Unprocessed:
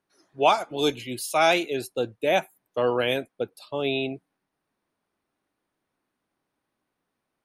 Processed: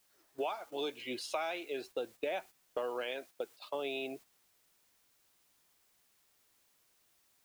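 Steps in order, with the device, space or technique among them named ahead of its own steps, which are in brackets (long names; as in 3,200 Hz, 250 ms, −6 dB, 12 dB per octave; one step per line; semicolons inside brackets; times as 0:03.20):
baby monitor (band-pass filter 360–3,800 Hz; downward compressor 10 to 1, threshold −35 dBFS, peak gain reduction 20.5 dB; white noise bed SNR 22 dB; noise gate −52 dBFS, range −8 dB)
0:03.03–0:03.75: low-shelf EQ 220 Hz −7.5 dB
level +1 dB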